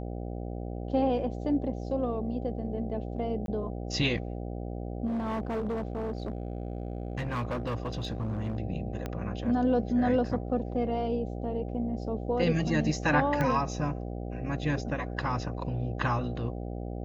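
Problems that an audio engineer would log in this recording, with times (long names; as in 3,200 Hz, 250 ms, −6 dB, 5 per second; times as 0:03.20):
mains buzz 60 Hz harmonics 13 −36 dBFS
0:03.46–0:03.48: drop-out 22 ms
0:05.06–0:08.57: clipping −28 dBFS
0:09.06: click −20 dBFS
0:13.41: click −17 dBFS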